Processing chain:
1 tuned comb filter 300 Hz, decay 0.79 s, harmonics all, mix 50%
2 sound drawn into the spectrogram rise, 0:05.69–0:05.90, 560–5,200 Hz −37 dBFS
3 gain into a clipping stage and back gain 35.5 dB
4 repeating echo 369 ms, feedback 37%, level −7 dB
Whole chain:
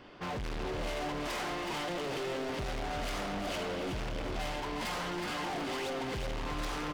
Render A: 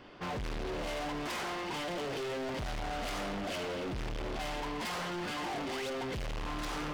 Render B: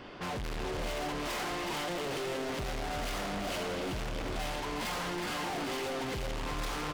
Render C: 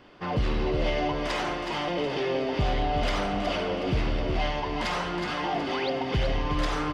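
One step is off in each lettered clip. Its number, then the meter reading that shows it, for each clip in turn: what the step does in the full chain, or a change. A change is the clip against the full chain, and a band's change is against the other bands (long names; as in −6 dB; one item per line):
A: 4, change in crest factor −3.5 dB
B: 1, 8 kHz band +3.0 dB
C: 3, distortion level −6 dB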